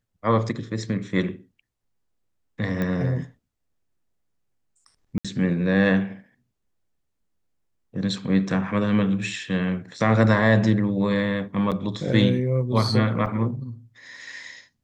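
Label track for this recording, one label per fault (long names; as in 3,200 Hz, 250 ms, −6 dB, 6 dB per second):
2.820000	2.820000	click −16 dBFS
5.180000	5.250000	drop-out 66 ms
11.710000	11.720000	drop-out 7.6 ms
13.260000	13.260000	drop-out 4.8 ms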